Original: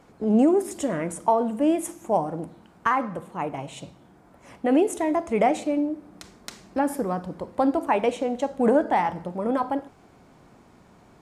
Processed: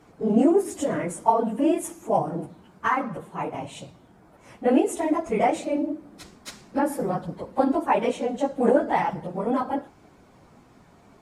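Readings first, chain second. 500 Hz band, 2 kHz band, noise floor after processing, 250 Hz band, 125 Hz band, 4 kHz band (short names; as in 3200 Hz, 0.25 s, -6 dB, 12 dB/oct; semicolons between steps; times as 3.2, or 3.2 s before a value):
0.0 dB, 0.0 dB, -55 dBFS, -0.5 dB, +1.0 dB, 0.0 dB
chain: phase scrambler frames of 50 ms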